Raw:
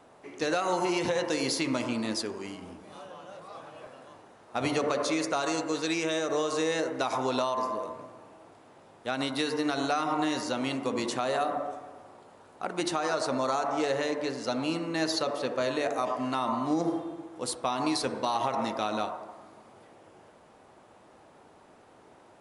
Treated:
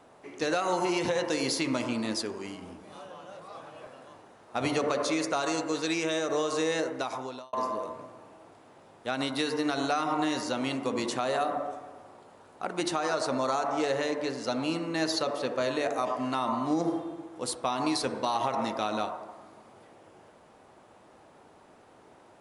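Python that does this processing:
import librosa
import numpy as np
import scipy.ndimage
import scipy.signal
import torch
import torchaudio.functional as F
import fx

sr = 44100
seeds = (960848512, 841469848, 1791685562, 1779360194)

y = fx.edit(x, sr, fx.fade_out_span(start_s=6.81, length_s=0.72), tone=tone)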